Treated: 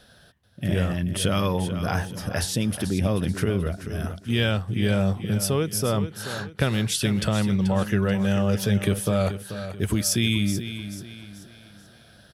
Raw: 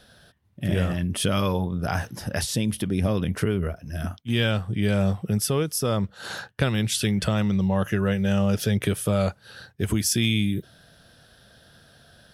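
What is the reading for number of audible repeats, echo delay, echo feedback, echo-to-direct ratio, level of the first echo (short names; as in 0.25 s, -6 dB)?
3, 0.434 s, 39%, -10.5 dB, -11.0 dB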